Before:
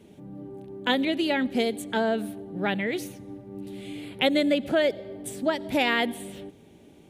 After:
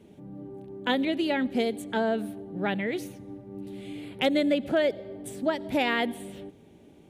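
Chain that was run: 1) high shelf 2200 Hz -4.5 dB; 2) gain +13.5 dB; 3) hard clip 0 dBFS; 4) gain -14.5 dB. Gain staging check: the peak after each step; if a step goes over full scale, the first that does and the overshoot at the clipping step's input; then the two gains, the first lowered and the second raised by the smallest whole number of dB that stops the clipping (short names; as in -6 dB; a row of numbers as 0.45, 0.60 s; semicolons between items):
-10.5, +3.0, 0.0, -14.5 dBFS; step 2, 3.0 dB; step 2 +10.5 dB, step 4 -11.5 dB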